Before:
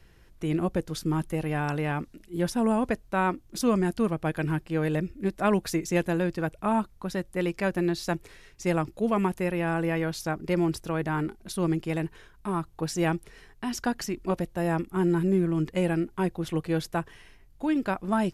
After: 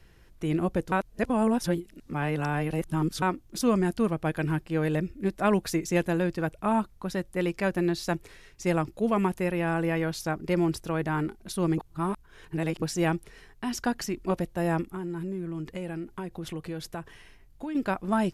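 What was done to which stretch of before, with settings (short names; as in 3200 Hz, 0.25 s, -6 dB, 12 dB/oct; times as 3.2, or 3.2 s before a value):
0.92–3.22 reverse
11.78–12.82 reverse
14.9–17.75 compressor 4:1, threshold -32 dBFS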